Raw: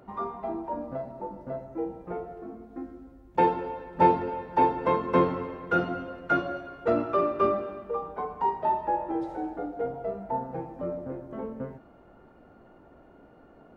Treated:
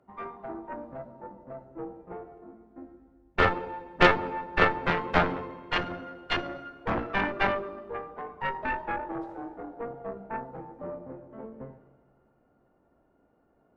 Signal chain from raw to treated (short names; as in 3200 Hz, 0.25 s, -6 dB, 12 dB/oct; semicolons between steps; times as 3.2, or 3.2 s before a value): Schroeder reverb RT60 2.7 s, combs from 29 ms, DRR 10 dB; added harmonics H 3 -10 dB, 4 -8 dB, 5 -24 dB, 7 -15 dB, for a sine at -7 dBFS; three-band expander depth 40%; gain -2.5 dB